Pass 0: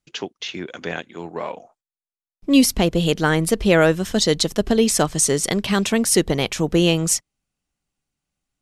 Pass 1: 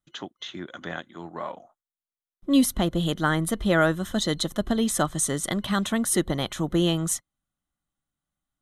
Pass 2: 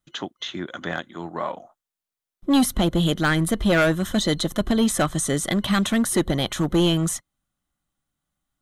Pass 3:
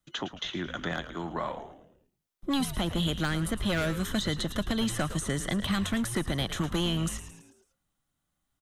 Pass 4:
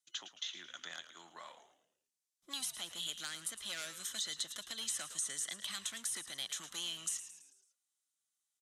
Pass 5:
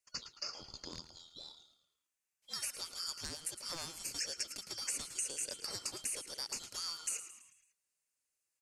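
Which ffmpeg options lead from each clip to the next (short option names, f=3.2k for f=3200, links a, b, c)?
-af "superequalizer=7b=0.447:10b=1.58:12b=0.355:14b=0.316:15b=0.631,volume=-5dB"
-filter_complex "[0:a]acrossover=split=2700[a][b];[a]asoftclip=type=hard:threshold=-20dB[c];[b]alimiter=limit=-22.5dB:level=0:latency=1:release=67[d];[c][d]amix=inputs=2:normalize=0,volume=5.5dB"
-filter_complex "[0:a]acrossover=split=170|960|3100[a][b][c][d];[a]acompressor=threshold=-32dB:ratio=4[e];[b]acompressor=threshold=-34dB:ratio=4[f];[c]acompressor=threshold=-36dB:ratio=4[g];[d]acompressor=threshold=-39dB:ratio=4[h];[e][f][g][h]amix=inputs=4:normalize=0,asplit=2[i][j];[j]asplit=5[k][l][m][n][o];[k]adelay=110,afreqshift=-110,volume=-11.5dB[p];[l]adelay=220,afreqshift=-220,volume=-17.9dB[q];[m]adelay=330,afreqshift=-330,volume=-24.3dB[r];[n]adelay=440,afreqshift=-440,volume=-30.6dB[s];[o]adelay=550,afreqshift=-550,volume=-37dB[t];[p][q][r][s][t]amix=inputs=5:normalize=0[u];[i][u]amix=inputs=2:normalize=0"
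-af "bandpass=f=7.3k:t=q:w=1.2:csg=0,volume=2dB"
-af "afftfilt=real='real(if(lt(b,272),68*(eq(floor(b/68),0)*1+eq(floor(b/68),1)*3+eq(floor(b/68),2)*0+eq(floor(b/68),3)*2)+mod(b,68),b),0)':imag='imag(if(lt(b,272),68*(eq(floor(b/68),0)*1+eq(floor(b/68),1)*3+eq(floor(b/68),2)*0+eq(floor(b/68),3)*2)+mod(b,68),b),0)':win_size=2048:overlap=0.75"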